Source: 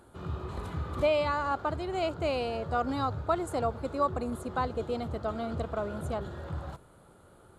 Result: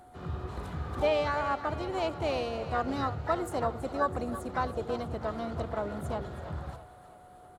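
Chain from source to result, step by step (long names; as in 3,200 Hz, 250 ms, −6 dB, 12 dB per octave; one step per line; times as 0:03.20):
echo with a time of its own for lows and highs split 500 Hz, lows 81 ms, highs 327 ms, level −13 dB
pitch-shifted copies added −5 semitones −15 dB, +5 semitones −13 dB, +7 semitones −16 dB
steady tone 730 Hz −51 dBFS
level −1.5 dB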